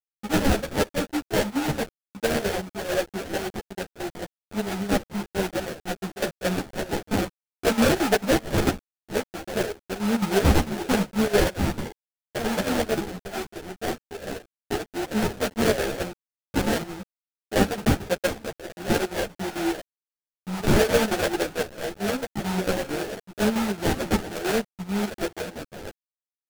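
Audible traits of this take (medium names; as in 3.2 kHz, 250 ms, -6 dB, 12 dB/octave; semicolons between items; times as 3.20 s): a quantiser's noise floor 6-bit, dither none; chopped level 4.5 Hz, depth 65%, duty 70%; aliases and images of a low sample rate 1.1 kHz, jitter 20%; a shimmering, thickened sound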